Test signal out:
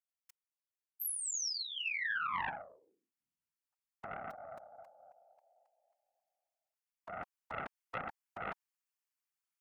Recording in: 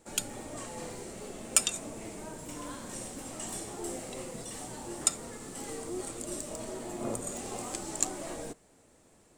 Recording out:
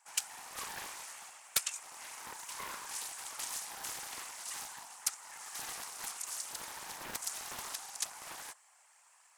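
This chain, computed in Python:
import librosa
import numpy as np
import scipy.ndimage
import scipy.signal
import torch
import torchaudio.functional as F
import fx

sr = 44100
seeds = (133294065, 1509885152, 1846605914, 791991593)

y = scipy.signal.sosfilt(scipy.signal.ellip(4, 1.0, 70, 870.0, 'highpass', fs=sr, output='sos'), x)
y = fx.peak_eq(y, sr, hz=3700.0, db=-9.0, octaves=0.27)
y = fx.rider(y, sr, range_db=5, speed_s=0.5)
y = fx.whisperise(y, sr, seeds[0])
y = fx.doppler_dist(y, sr, depth_ms=0.68)
y = y * 10.0 ** (-1.5 / 20.0)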